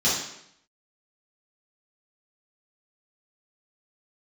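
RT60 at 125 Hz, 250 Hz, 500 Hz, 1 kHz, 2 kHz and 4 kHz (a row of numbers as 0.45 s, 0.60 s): 0.80 s, 0.75 s, 0.75 s, 0.75 s, 0.75 s, 0.70 s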